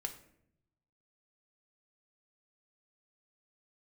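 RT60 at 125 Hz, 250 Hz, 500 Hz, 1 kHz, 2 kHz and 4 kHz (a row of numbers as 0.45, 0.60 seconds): 1.4, 1.1, 0.85, 0.60, 0.60, 0.45 seconds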